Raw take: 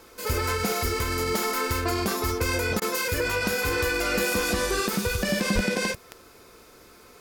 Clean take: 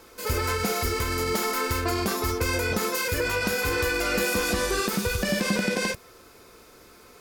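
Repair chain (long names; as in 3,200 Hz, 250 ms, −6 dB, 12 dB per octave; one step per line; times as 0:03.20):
click removal
0:05.54–0:05.66: high-pass filter 140 Hz 24 dB per octave
repair the gap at 0:02.80, 16 ms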